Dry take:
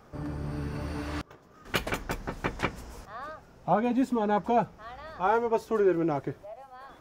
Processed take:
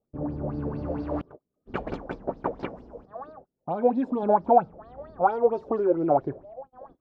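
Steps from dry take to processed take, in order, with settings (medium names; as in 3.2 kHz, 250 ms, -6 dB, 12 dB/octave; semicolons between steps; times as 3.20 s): gate -47 dBFS, range -28 dB; 2.01–4.23 s: bass shelf 160 Hz -9 dB; compression 12:1, threshold -26 dBFS, peak gain reduction 8 dB; level-controlled noise filter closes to 390 Hz, open at -14.5 dBFS; FFT filter 110 Hz 0 dB, 270 Hz +5 dB, 1.9 kHz -2 dB, 4.2 kHz +8 dB, 7.1 kHz +12 dB; sweeping bell 4.4 Hz 540–5000 Hz +18 dB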